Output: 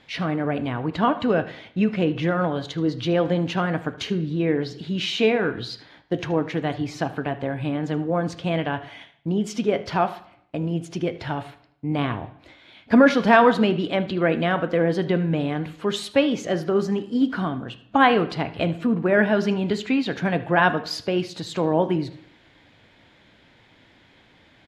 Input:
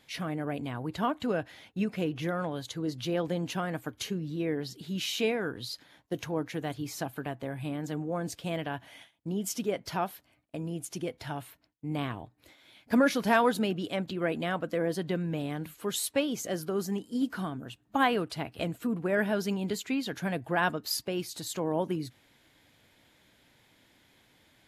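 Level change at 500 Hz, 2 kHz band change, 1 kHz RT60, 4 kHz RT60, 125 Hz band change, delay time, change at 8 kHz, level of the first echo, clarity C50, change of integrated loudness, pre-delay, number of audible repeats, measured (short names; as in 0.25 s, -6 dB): +9.5 dB, +9.0 dB, 0.65 s, 0.65 s, +9.5 dB, 77 ms, -3.5 dB, -18.5 dB, 13.5 dB, +9.0 dB, 7 ms, 1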